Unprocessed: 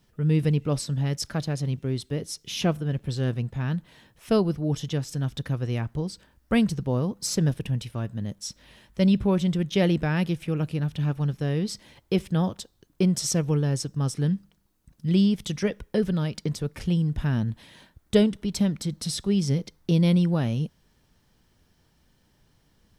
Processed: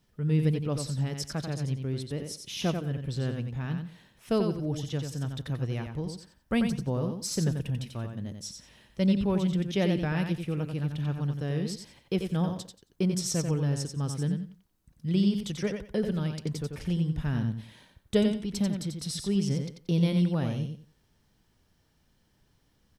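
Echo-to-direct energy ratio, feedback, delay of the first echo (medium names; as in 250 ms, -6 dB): -6.0 dB, 22%, 90 ms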